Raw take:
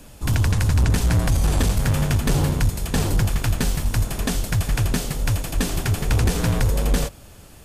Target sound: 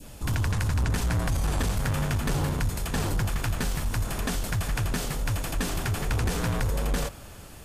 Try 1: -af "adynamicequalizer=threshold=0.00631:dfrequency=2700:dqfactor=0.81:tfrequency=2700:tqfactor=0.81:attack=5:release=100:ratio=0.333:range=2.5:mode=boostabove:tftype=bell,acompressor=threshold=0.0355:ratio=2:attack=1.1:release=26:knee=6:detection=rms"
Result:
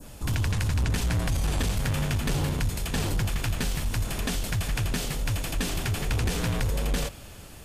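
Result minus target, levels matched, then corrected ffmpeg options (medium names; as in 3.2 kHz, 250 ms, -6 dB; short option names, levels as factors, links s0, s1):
1 kHz band -2.5 dB
-af "adynamicequalizer=threshold=0.00631:dfrequency=1300:dqfactor=0.81:tfrequency=1300:tqfactor=0.81:attack=5:release=100:ratio=0.333:range=2.5:mode=boostabove:tftype=bell,acompressor=threshold=0.0355:ratio=2:attack=1.1:release=26:knee=6:detection=rms"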